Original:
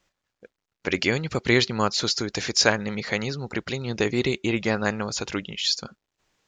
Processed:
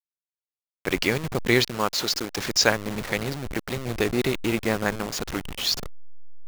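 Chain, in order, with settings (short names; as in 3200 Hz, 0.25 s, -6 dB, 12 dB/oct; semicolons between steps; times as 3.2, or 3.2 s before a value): level-crossing sampler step -26.5 dBFS; 1.69–2.38 low shelf 180 Hz -9.5 dB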